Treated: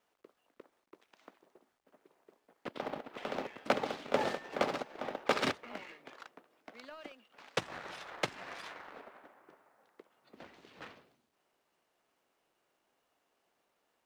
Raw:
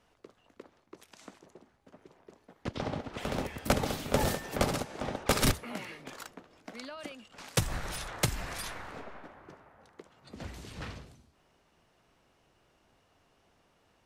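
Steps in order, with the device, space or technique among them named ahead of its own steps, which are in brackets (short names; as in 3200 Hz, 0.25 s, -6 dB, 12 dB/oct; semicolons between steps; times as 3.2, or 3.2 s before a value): phone line with mismatched companding (BPF 310–3400 Hz; G.711 law mismatch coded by A)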